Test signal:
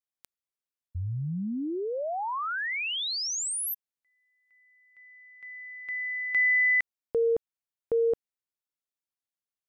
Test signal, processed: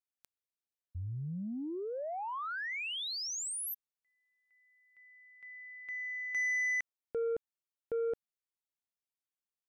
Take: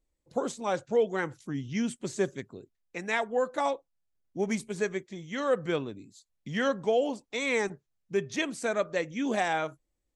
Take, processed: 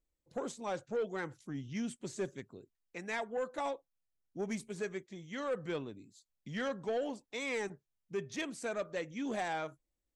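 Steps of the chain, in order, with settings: soft clip -22 dBFS; gain -6.5 dB

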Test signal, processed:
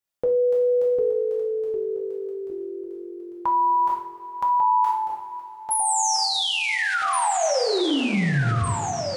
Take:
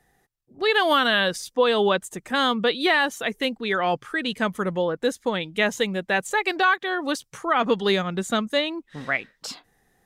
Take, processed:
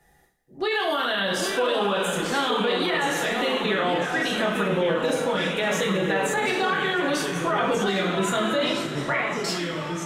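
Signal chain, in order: two-slope reverb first 0.49 s, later 4.2 s, from -20 dB, DRR -3.5 dB; limiter -16.5 dBFS; echoes that change speed 0.722 s, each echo -2 st, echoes 3, each echo -6 dB

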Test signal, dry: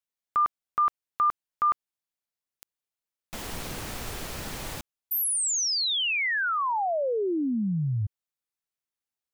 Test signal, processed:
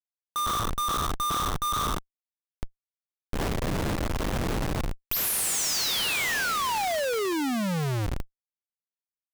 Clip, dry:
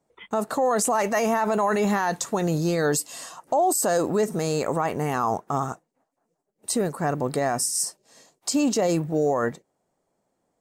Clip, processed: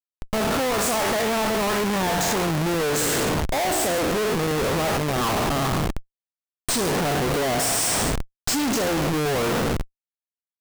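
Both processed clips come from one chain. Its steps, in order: spectral trails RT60 1.19 s; Schmitt trigger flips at -29.5 dBFS

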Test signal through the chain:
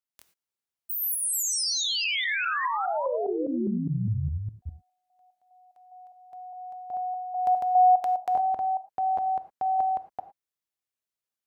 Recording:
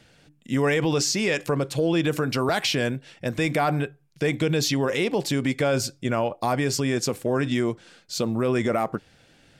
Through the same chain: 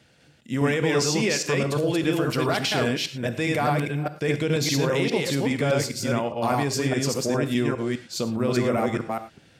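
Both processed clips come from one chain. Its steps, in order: reverse delay 0.204 s, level -1 dB; HPF 52 Hz; non-linear reverb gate 0.13 s flat, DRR 10.5 dB; gain -2.5 dB

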